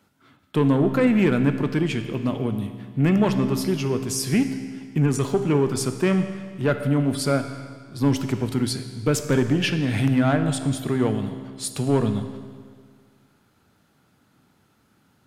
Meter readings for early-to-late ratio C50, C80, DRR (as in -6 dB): 9.0 dB, 10.5 dB, 8.0 dB